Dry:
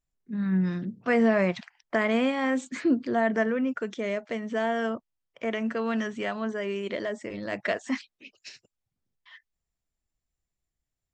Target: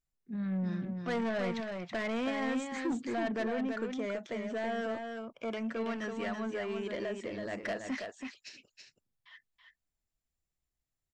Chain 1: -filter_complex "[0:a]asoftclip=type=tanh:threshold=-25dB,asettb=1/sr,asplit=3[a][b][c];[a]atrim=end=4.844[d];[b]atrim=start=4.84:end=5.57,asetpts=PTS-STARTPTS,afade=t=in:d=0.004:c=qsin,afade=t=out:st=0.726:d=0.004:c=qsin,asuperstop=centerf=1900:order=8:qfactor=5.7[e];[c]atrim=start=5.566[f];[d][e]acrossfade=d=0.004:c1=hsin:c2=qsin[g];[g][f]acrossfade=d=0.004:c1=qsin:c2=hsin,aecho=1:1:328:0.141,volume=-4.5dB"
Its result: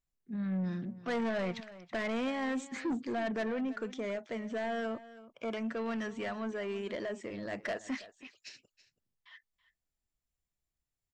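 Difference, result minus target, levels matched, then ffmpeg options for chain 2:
echo-to-direct -11.5 dB
-filter_complex "[0:a]asoftclip=type=tanh:threshold=-25dB,asettb=1/sr,asplit=3[a][b][c];[a]atrim=end=4.844[d];[b]atrim=start=4.84:end=5.57,asetpts=PTS-STARTPTS,afade=t=in:d=0.004:c=qsin,afade=t=out:st=0.726:d=0.004:c=qsin,asuperstop=centerf=1900:order=8:qfactor=5.7[e];[c]atrim=start=5.566[f];[d][e]acrossfade=d=0.004:c1=hsin:c2=qsin[g];[g][f]acrossfade=d=0.004:c1=qsin:c2=hsin,aecho=1:1:328:0.531,volume=-4.5dB"

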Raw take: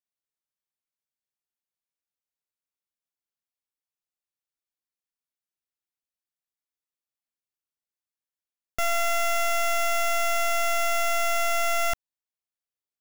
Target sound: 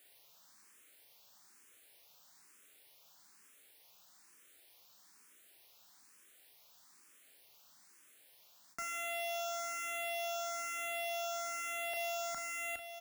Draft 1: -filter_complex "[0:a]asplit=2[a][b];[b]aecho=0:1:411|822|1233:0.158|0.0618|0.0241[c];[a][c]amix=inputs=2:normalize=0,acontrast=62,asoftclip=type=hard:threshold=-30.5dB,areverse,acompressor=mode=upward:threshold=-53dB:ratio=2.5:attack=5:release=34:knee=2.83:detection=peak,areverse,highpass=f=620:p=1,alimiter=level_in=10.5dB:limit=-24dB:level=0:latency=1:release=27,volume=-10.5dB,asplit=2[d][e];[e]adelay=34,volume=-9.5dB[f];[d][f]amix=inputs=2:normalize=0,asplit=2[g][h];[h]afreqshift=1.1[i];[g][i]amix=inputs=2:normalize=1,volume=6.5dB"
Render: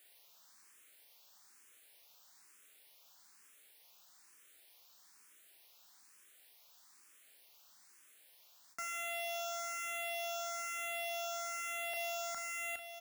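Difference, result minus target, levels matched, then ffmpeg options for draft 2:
250 Hz band -4.5 dB
-filter_complex "[0:a]asplit=2[a][b];[b]aecho=0:1:411|822|1233:0.158|0.0618|0.0241[c];[a][c]amix=inputs=2:normalize=0,acontrast=62,asoftclip=type=hard:threshold=-30.5dB,areverse,acompressor=mode=upward:threshold=-53dB:ratio=2.5:attack=5:release=34:knee=2.83:detection=peak,areverse,highpass=f=250:p=1,alimiter=level_in=10.5dB:limit=-24dB:level=0:latency=1:release=27,volume=-10.5dB,asplit=2[d][e];[e]adelay=34,volume=-9.5dB[f];[d][f]amix=inputs=2:normalize=0,asplit=2[g][h];[h]afreqshift=1.1[i];[g][i]amix=inputs=2:normalize=1,volume=6.5dB"

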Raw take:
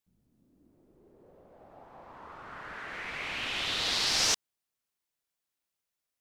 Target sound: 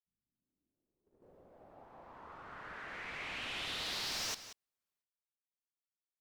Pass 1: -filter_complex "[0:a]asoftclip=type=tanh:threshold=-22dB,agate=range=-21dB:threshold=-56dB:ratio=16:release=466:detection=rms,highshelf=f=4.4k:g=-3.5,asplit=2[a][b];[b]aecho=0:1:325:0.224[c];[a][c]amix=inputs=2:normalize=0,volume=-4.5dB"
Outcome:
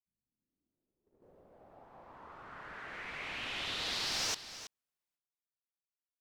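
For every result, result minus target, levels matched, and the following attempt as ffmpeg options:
echo 0.142 s late; soft clip: distortion -8 dB
-filter_complex "[0:a]asoftclip=type=tanh:threshold=-22dB,agate=range=-21dB:threshold=-56dB:ratio=16:release=466:detection=rms,highshelf=f=4.4k:g=-3.5,asplit=2[a][b];[b]aecho=0:1:183:0.224[c];[a][c]amix=inputs=2:normalize=0,volume=-4.5dB"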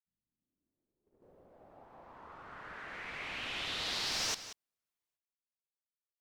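soft clip: distortion -8 dB
-filter_complex "[0:a]asoftclip=type=tanh:threshold=-29.5dB,agate=range=-21dB:threshold=-56dB:ratio=16:release=466:detection=rms,highshelf=f=4.4k:g=-3.5,asplit=2[a][b];[b]aecho=0:1:183:0.224[c];[a][c]amix=inputs=2:normalize=0,volume=-4.5dB"

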